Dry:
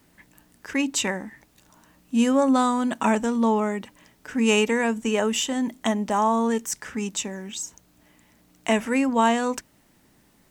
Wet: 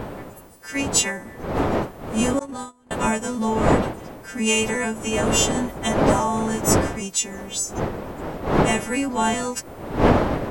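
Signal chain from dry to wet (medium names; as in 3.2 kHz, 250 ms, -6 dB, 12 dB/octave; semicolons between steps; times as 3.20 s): partials quantised in pitch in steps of 2 st; wind noise 600 Hz -23 dBFS; 2.39–2.91 s: gate -17 dBFS, range -32 dB; trim -2 dB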